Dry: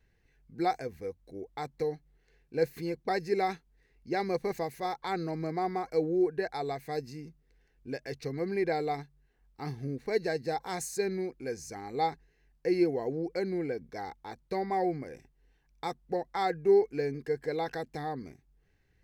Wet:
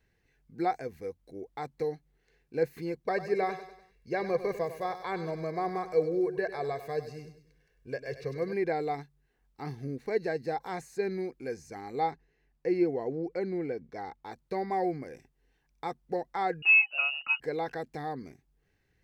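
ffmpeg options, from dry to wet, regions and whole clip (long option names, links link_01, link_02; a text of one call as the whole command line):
ffmpeg -i in.wav -filter_complex "[0:a]asettb=1/sr,asplit=3[link_01][link_02][link_03];[link_01]atrim=end=3.034[link_04];[link_02]atrim=start=3.03:end=8.53,asetpts=PTS-STARTPTS,afade=type=in:duration=0.004:curve=qsin,afade=type=out:start_time=5.496:duration=0.004:curve=qsin,aecho=1:1:1.8:0.57,atrim=end_sample=242550,aecho=1:1:98|196|294|392:0.237|0.107|0.048|0.0216,atrim=end_sample=242550[link_05];[link_03]atrim=start=8.526[link_06];[link_04][link_05]acrossfade=duration=0.004:curve1=hsin:curve2=qsin[link_07];[link_07][link_06]acrossfade=duration=0.004:curve1=qsin:curve2=hsin,asettb=1/sr,asplit=3[link_08][link_09][link_10];[link_08]atrim=end=12.114[link_11];[link_09]atrim=start=12.11:end=14.25,asetpts=PTS-STARTPTS,afade=type=in:duration=0.004:curve=qsin,afade=type=out:start_time=2.136:duration=0.004:curve=qsin,highshelf=frequency=5000:gain=-11,bandreject=frequency=1600:width=24[link_12];[link_10]atrim=start=14.246[link_13];[link_11][link_12]acrossfade=duration=0.004:curve1=hsin:curve2=qsin[link_14];[link_14][link_13]acrossfade=duration=0.004:curve1=qsin:curve2=hsin,asettb=1/sr,asplit=3[link_15][link_16][link_17];[link_15]atrim=end=16.624[link_18];[link_16]atrim=start=16.62:end=17.4,asetpts=PTS-STARTPTS,afade=type=in:duration=0.004:curve=qsin,afade=type=out:start_time=0.776:duration=0.004:curve=qsin,lowpass=frequency=2600:width_type=q:width=0.5098,lowpass=frequency=2600:width_type=q:width=0.6013,lowpass=frequency=2600:width_type=q:width=0.9,lowpass=frequency=2600:width_type=q:width=2.563,afreqshift=-3000,acontrast=50[link_19];[link_17]atrim=start=17.396[link_20];[link_18][link_19]acrossfade=duration=0.004:curve1=hsin:curve2=qsin[link_21];[link_21][link_20]acrossfade=duration=0.004:curve1=qsin:curve2=hsin,acrossover=split=2800[link_22][link_23];[link_23]acompressor=threshold=-54dB:ratio=4:attack=1:release=60[link_24];[link_22][link_24]amix=inputs=2:normalize=0,lowshelf=frequency=68:gain=-8" out.wav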